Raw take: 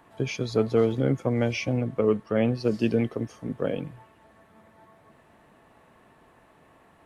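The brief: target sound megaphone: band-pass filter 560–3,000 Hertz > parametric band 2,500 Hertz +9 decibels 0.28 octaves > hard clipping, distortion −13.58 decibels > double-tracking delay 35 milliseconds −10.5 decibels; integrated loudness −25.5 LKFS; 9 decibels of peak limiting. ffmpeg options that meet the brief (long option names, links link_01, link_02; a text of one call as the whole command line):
ffmpeg -i in.wav -filter_complex "[0:a]alimiter=limit=-18.5dB:level=0:latency=1,highpass=560,lowpass=3000,equalizer=frequency=2500:width_type=o:width=0.28:gain=9,asoftclip=type=hard:threshold=-28dB,asplit=2[link_01][link_02];[link_02]adelay=35,volume=-10.5dB[link_03];[link_01][link_03]amix=inputs=2:normalize=0,volume=10.5dB" out.wav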